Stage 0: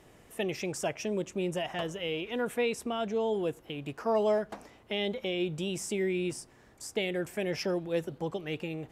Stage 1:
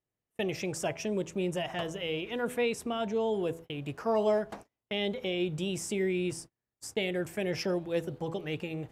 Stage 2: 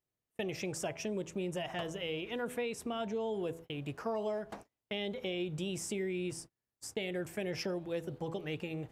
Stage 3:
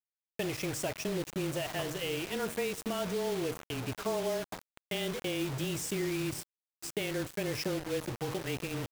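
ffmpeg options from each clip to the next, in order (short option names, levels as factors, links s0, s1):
-af "bandreject=f=82.67:t=h:w=4,bandreject=f=165.34:t=h:w=4,bandreject=f=248.01:t=h:w=4,bandreject=f=330.68:t=h:w=4,bandreject=f=413.35:t=h:w=4,bandreject=f=496.02:t=h:w=4,bandreject=f=578.69:t=h:w=4,bandreject=f=661.36:t=h:w=4,bandreject=f=744.03:t=h:w=4,bandreject=f=826.7:t=h:w=4,bandreject=f=909.37:t=h:w=4,bandreject=f=992.04:t=h:w=4,bandreject=f=1074.71:t=h:w=4,agate=range=0.0178:threshold=0.00562:ratio=16:detection=peak,equalizer=f=110:w=1.6:g=5.5"
-af "acompressor=threshold=0.0316:ratio=6,volume=0.75"
-filter_complex "[0:a]afreqshift=-20,asplit=2[s0][s1];[s1]adelay=689,lowpass=f=1900:p=1,volume=0.141,asplit=2[s2][s3];[s3]adelay=689,lowpass=f=1900:p=1,volume=0.37,asplit=2[s4][s5];[s5]adelay=689,lowpass=f=1900:p=1,volume=0.37[s6];[s0][s2][s4][s6]amix=inputs=4:normalize=0,acrusher=bits=6:mix=0:aa=0.000001,volume=1.33"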